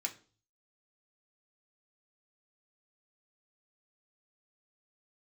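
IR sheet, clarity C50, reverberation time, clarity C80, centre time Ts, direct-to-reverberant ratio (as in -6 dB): 15.0 dB, 0.40 s, 20.0 dB, 9 ms, 1.0 dB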